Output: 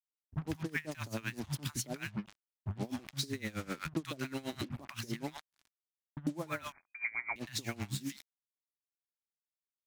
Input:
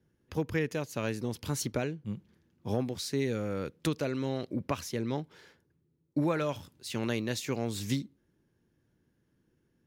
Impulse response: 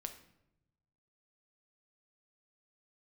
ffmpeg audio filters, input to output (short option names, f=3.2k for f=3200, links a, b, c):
-filter_complex "[0:a]asettb=1/sr,asplit=3[a][b][c];[a]atrim=end=4.364[d];[b]atrim=start=4.36:end=5.07,asetpts=PTS-STARTPTS,afade=t=in:d=0.004:c=qsin,afade=t=out:st=0.706:d=0.004:c=qsin,bandreject=f=60:t=h:w=6,bandreject=f=120:t=h:w=6,bandreject=f=180:t=h:w=6,bandreject=f=240:t=h:w=6[e];[c]atrim=start=5.066[f];[d][e]acrossfade=d=0.004:c1=hsin:c2=qsin[g];[g][f]acrossfade=d=0.004:c1=qsin:c2=hsin,acrossover=split=160|890[h][i][j];[i]adelay=100[k];[j]adelay=200[l];[h][k][l]amix=inputs=3:normalize=0,adynamicequalizer=threshold=0.00282:dfrequency=1900:dqfactor=1.2:tfrequency=1900:tqfactor=1.2:attack=5:release=100:ratio=0.375:range=2.5:mode=boostabove:tftype=bell,asplit=2[m][n];[1:a]atrim=start_sample=2205,atrim=end_sample=3528,asetrate=74970,aresample=44100[o];[n][o]afir=irnorm=-1:irlink=0,volume=-8dB[p];[m][p]amix=inputs=2:normalize=0,acrusher=bits=6:mix=0:aa=0.5,asettb=1/sr,asplit=3[q][r][s];[q]atrim=end=6.724[t];[r]atrim=start=6.72:end=7.36,asetpts=PTS-STARTPTS,afade=t=in:d=0.004:c=qsin,afade=t=out:st=0.636:d=0.004:c=qsin,lowpass=f=2.1k:t=q:w=0.5098,lowpass=f=2.1k:t=q:w=0.6013,lowpass=f=2.1k:t=q:w=0.9,lowpass=f=2.1k:t=q:w=2.563,afreqshift=-2500[u];[s]atrim=start=7.356[v];[t][u]acrossfade=d=0.004:c1=hsin:c2=qsin[w];[w][v]acrossfade=d=0.004:c1=qsin:c2=hsin,equalizer=f=480:t=o:w=0.53:g=-11,acompressor=threshold=-38dB:ratio=6,aeval=exprs='val(0)*pow(10,-21*(0.5-0.5*cos(2*PI*7.8*n/s))/20)':c=same,volume=7.5dB"